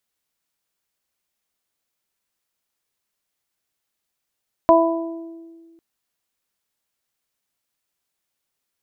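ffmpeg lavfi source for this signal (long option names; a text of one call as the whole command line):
ffmpeg -f lavfi -i "aevalsrc='0.178*pow(10,-3*t/1.9)*sin(2*PI*331*t)+0.355*pow(10,-3*t/0.95)*sin(2*PI*662*t)+0.237*pow(10,-3*t/0.76)*sin(2*PI*993*t)':duration=1.1:sample_rate=44100" out.wav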